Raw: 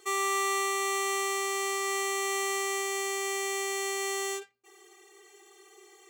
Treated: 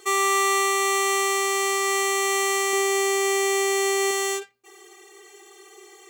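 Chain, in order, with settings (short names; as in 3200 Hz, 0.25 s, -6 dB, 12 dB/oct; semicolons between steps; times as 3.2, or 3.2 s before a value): 2.73–4.11 low shelf 400 Hz +8 dB; gain +7.5 dB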